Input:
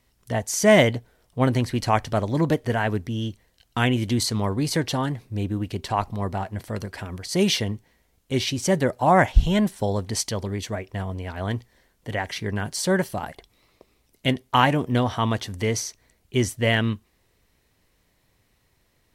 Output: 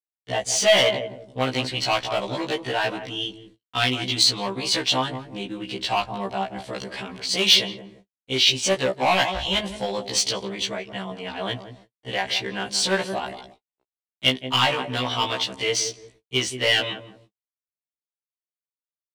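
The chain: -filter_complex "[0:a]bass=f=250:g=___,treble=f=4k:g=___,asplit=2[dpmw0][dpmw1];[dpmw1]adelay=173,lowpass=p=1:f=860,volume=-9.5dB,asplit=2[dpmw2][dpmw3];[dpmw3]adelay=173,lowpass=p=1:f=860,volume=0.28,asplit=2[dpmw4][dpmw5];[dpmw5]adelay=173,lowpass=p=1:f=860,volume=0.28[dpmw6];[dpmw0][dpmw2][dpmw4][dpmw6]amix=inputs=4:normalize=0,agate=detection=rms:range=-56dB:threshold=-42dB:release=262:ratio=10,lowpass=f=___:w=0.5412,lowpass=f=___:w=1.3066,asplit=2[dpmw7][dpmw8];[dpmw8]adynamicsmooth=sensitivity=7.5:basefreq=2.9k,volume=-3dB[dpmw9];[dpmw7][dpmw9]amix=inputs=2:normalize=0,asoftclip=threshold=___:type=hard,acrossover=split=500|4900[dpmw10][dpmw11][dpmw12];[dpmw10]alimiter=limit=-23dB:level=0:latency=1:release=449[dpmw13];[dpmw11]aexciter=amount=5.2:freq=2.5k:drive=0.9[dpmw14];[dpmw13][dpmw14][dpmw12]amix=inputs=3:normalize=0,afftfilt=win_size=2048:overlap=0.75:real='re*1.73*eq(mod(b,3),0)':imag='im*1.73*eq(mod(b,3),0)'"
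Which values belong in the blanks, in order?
-7, 4, 9.1k, 9.1k, -12.5dB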